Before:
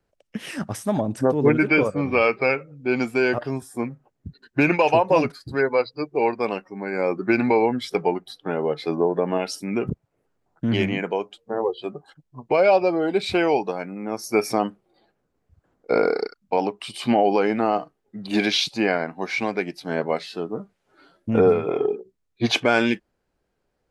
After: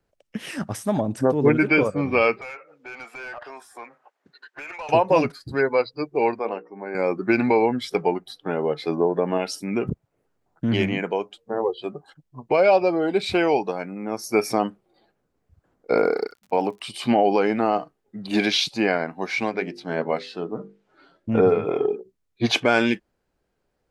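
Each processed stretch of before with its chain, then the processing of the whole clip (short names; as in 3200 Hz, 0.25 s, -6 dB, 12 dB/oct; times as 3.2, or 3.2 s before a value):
2.41–4.89 HPF 820 Hz + compressor 2:1, threshold -52 dBFS + overdrive pedal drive 22 dB, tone 1200 Hz, clips at -22.5 dBFS
6.39–6.95 band-pass 670 Hz, Q 0.74 + notches 60/120/180/240/300/360/420/480/540 Hz
15.96–16.8 HPF 57 Hz + high shelf 5500 Hz -11.5 dB + crackle 94/s -42 dBFS
19.49–21.65 air absorption 64 m + notches 50/100/150/200/250/300/350/400/450/500 Hz
whole clip: dry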